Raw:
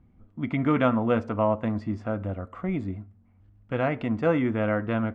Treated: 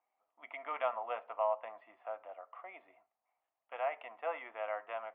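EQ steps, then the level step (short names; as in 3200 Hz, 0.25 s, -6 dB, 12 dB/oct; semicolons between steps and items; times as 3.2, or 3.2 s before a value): elliptic band-pass 690–3100 Hz, stop band 60 dB; air absorption 360 m; bell 1500 Hz -11 dB 0.43 oct; -2.5 dB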